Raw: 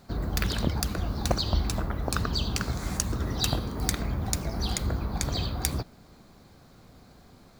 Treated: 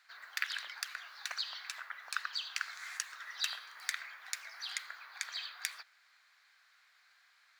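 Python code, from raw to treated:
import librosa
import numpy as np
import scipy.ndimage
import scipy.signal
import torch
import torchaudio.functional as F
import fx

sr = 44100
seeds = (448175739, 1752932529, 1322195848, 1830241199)

y = fx.ladder_highpass(x, sr, hz=1500.0, resonance_pct=50)
y = fx.high_shelf(y, sr, hz=7200.0, db=-11.5)
y = y * librosa.db_to_amplitude(4.5)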